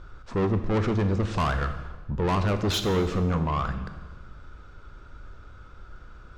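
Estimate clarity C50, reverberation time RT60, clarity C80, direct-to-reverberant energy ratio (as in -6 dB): 10.0 dB, 1.3 s, 11.5 dB, 8.0 dB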